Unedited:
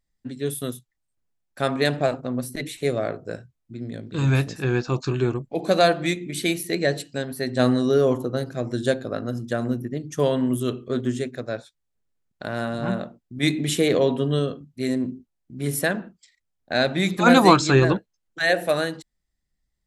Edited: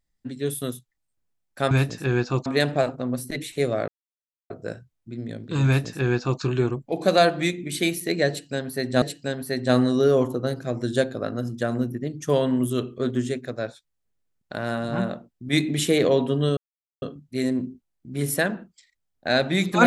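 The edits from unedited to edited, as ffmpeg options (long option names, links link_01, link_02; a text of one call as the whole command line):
ffmpeg -i in.wav -filter_complex "[0:a]asplit=6[link_01][link_02][link_03][link_04][link_05][link_06];[link_01]atrim=end=1.712[link_07];[link_02]atrim=start=4.288:end=5.042[link_08];[link_03]atrim=start=1.708:end=3.13,asetpts=PTS-STARTPTS,afade=type=out:start_time=1.418:duration=0.004:curve=hsin,apad=pad_dur=0.62[link_09];[link_04]atrim=start=3.13:end=7.652,asetpts=PTS-STARTPTS,afade=type=in:duration=0.004:curve=hsin[link_10];[link_05]atrim=start=6.918:end=14.47,asetpts=PTS-STARTPTS,afade=type=out:start_time=7.548:duration=0.004:curve=hsin,apad=pad_dur=0.45[link_11];[link_06]atrim=start=14.47,asetpts=PTS-STARTPTS,afade=type=in:duration=0.004:curve=hsin[link_12];[link_07][link_08]acrossfade=duration=0.004:curve1=hsin:curve2=hsin[link_13];[link_09][link_10]concat=n=2:v=0:a=1[link_14];[link_13][link_14]acrossfade=duration=0.004:curve1=hsin:curve2=hsin[link_15];[link_11][link_12]concat=n=2:v=0:a=1[link_16];[link_15][link_16]acrossfade=duration=0.004:curve1=hsin:curve2=hsin" out.wav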